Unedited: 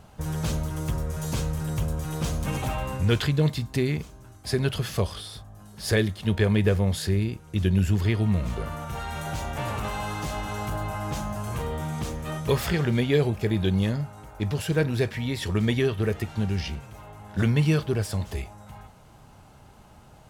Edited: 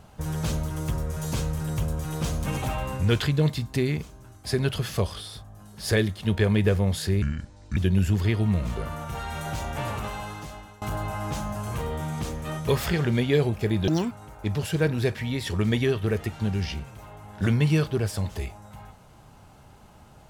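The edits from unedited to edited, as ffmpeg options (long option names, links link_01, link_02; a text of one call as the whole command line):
ffmpeg -i in.wav -filter_complex "[0:a]asplit=6[link_01][link_02][link_03][link_04][link_05][link_06];[link_01]atrim=end=7.224[link_07];[link_02]atrim=start=7.22:end=7.57,asetpts=PTS-STARTPTS,asetrate=28224,aresample=44100,atrim=end_sample=24117,asetpts=PTS-STARTPTS[link_08];[link_03]atrim=start=7.566:end=10.62,asetpts=PTS-STARTPTS,afade=type=out:start_time=2.074:duration=0.98:silence=0.0749894[link_09];[link_04]atrim=start=10.62:end=13.684,asetpts=PTS-STARTPTS,afade=type=in:duration=0.004:curve=hsin:silence=0.0749894[link_10];[link_05]atrim=start=13.68:end=14.07,asetpts=PTS-STARTPTS,asetrate=73206,aresample=44100[link_11];[link_06]atrim=start=14.066[link_12];[link_07][link_08]acrossfade=duration=0.004:curve1=hsin:curve2=hsin[link_13];[link_09][link_10]concat=n=2:v=0:a=1[link_14];[link_13][link_14]acrossfade=duration=0.004:curve1=hsin:curve2=hsin[link_15];[link_15][link_11]acrossfade=duration=0.004:curve1=hsin:curve2=hsin[link_16];[link_16][link_12]acrossfade=duration=0.004:curve1=hsin:curve2=hsin" out.wav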